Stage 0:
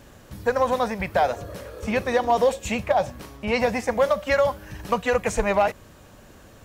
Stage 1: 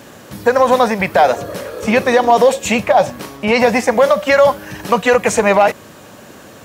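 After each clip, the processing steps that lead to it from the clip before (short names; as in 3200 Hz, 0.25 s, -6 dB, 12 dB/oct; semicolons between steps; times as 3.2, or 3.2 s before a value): HPF 160 Hz 12 dB/oct; maximiser +13 dB; gain -1 dB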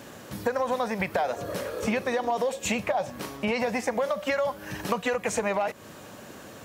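compressor, threshold -18 dBFS, peak gain reduction 11.5 dB; gain -6 dB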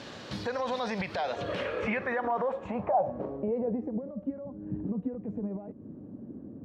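limiter -24 dBFS, peak gain reduction 11 dB; low-pass sweep 4300 Hz -> 270 Hz, 1.18–4.05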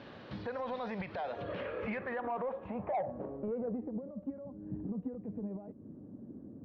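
soft clip -22 dBFS, distortion -19 dB; air absorption 310 m; gain -4.5 dB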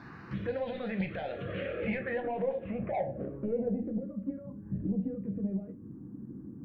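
shoebox room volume 140 m³, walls furnished, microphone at 0.77 m; envelope phaser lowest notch 490 Hz, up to 1200 Hz, full sweep at -31.5 dBFS; gain +5 dB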